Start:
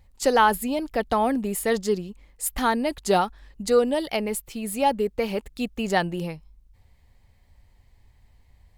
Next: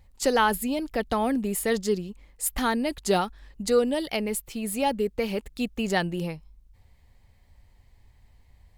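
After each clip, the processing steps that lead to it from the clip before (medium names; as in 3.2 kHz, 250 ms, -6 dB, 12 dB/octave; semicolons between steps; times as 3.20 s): dynamic bell 840 Hz, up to -5 dB, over -34 dBFS, Q 0.89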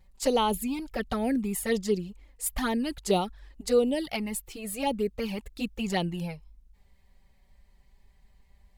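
touch-sensitive flanger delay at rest 5.5 ms, full sweep at -19.5 dBFS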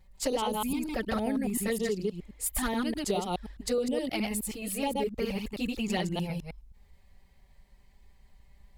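chunks repeated in reverse 105 ms, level -2 dB; compression 6:1, threshold -26 dBFS, peak gain reduction 9.5 dB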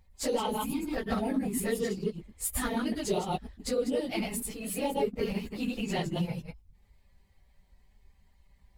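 phase randomisation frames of 50 ms; in parallel at -6 dB: hysteresis with a dead band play -34.5 dBFS; on the sum: trim -4 dB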